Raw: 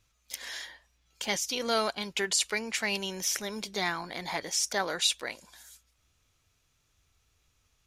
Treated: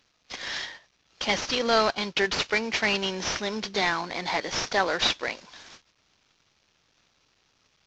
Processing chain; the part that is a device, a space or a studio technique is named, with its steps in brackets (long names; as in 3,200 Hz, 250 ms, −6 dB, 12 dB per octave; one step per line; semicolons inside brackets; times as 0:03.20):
0:03.81–0:05.62: high-pass filter 120 Hz 12 dB per octave
early wireless headset (high-pass filter 160 Hz 12 dB per octave; variable-slope delta modulation 32 kbit/s)
level +7 dB